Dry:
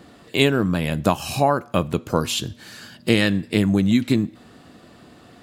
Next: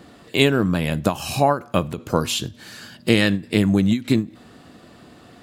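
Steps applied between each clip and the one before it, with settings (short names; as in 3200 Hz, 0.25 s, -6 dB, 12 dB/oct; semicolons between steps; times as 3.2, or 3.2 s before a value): ending taper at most 220 dB/s; gain +1 dB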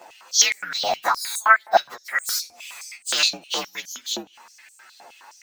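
inharmonic rescaling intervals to 119%; stepped high-pass 9.6 Hz 740–7800 Hz; gain +4 dB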